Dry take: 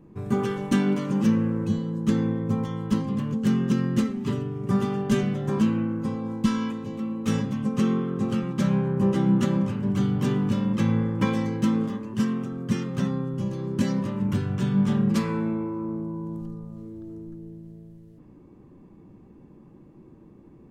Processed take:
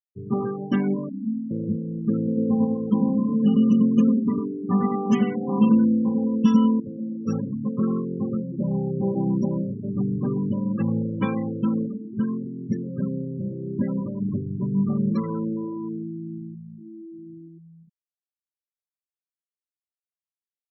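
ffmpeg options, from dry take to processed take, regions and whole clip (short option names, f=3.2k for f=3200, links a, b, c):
-filter_complex "[0:a]asettb=1/sr,asplit=3[a][b][c];[a]atrim=end=1.094[d];[b]atrim=start=1.09:end=1.51,asetpts=PTS-STARTPTS,afade=t=in:d=0.004:c=qsin,afade=t=out:st=0.416:d=0.004:c=qsin,asplit=3[e][f][g];[e]bandpass=f=270:t=q:w=8,volume=0dB[h];[f]bandpass=f=2.29k:t=q:w=8,volume=-6dB[i];[g]bandpass=f=3.01k:t=q:w=8,volume=-9dB[j];[h][i][j]amix=inputs=3:normalize=0,bandreject=f=60:t=h:w=6,bandreject=f=120:t=h:w=6,bandreject=f=180:t=h:w=6,bandreject=f=240:t=h:w=6,bandreject=f=300:t=h:w=6,bandreject=f=360:t=h:w=6,bandreject=f=420:t=h:w=6,aecho=1:1:4.5:0.77,atrim=end_sample=18522[k];[c]atrim=start=1.506[l];[d][k]acrossfade=d=0.004:c1=hsin:c2=qsin[m];[m][l]acrossfade=d=0.004:c1=qsin:c2=hsin,asettb=1/sr,asplit=3[n][o][p];[n]atrim=end=2.274[q];[o]atrim=start=2.27:end=6.8,asetpts=PTS-STARTPTS,afade=t=in:d=0.004:c=qsin,afade=t=out:st=4.526:d=0.004:c=qsin,aecho=1:1:4.1:0.72,atrim=end_sample=199773,asplit=2[r][s];[s]adelay=99,lowpass=f=2.2k:p=1,volume=-3dB,asplit=2[t][u];[u]adelay=99,lowpass=f=2.2k:p=1,volume=0.2,asplit=2[v][w];[w]adelay=99,lowpass=f=2.2k:p=1,volume=0.2[x];[r][t][v][x]amix=inputs=4:normalize=0,atrim=end_sample=199773[y];[p]atrim=start=6.796[z];[q][y]acrossfade=d=0.004:c1=hsin:c2=qsin[aa];[aa][z]acrossfade=d=0.004:c1=qsin:c2=hsin,asettb=1/sr,asplit=3[ab][ac][ad];[ab]atrim=end=8.384[ae];[ac]atrim=start=8.38:end=9.96,asetpts=PTS-STARTPTS,afade=t=in:d=0.004:c=qsin,afade=t=out:st=1.576:d=0.004:c=qsin,asuperstop=centerf=2100:order=8:qfactor=0.63,equalizer=f=3k:t=o:w=2.3:g=3,bandreject=f=50:t=h:w=6,bandreject=f=100:t=h:w=6,bandreject=f=150:t=h:w=6,bandreject=f=200:t=h:w=6,bandreject=f=250:t=h:w=6,bandreject=f=300:t=h:w=6,bandreject=f=350:t=h:w=6[af];[ad]atrim=start=9.956[ag];[ae][af]acrossfade=d=0.004:c1=hsin:c2=qsin[ah];[ah][ag]acrossfade=d=0.004:c1=qsin:c2=hsin,highpass=120,afftfilt=real='re*gte(hypot(re,im),0.0562)':imag='im*gte(hypot(re,im),0.0562)':win_size=1024:overlap=0.75"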